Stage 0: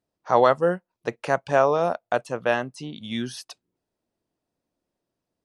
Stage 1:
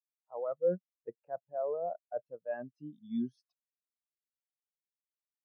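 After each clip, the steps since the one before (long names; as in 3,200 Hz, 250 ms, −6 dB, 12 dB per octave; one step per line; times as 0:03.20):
reversed playback
downward compressor 6 to 1, threshold −26 dBFS, peak gain reduction 13.5 dB
reversed playback
every bin expanded away from the loudest bin 2.5 to 1
level −7.5 dB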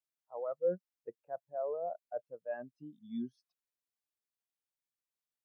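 dynamic equaliser 140 Hz, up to −5 dB, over −50 dBFS, Q 0.7
level −1.5 dB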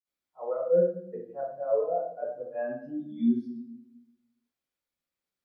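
convolution reverb RT60 0.70 s, pre-delay 46 ms
level −8.5 dB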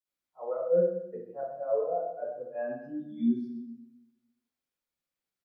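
repeating echo 126 ms, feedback 31%, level −12 dB
level −2 dB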